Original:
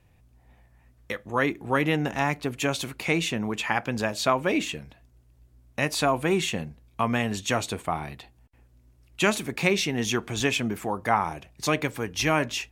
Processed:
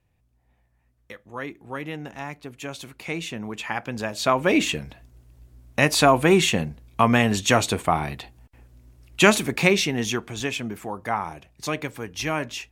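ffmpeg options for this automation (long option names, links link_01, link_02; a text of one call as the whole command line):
ffmpeg -i in.wav -af "volume=7dB,afade=type=in:start_time=2.57:duration=1.54:silence=0.421697,afade=type=in:start_time=4.11:duration=0.59:silence=0.375837,afade=type=out:start_time=9.3:duration=1.04:silence=0.316228" out.wav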